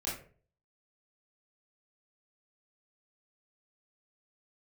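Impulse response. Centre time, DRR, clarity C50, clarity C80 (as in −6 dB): 40 ms, −8.5 dB, 4.5 dB, 10.0 dB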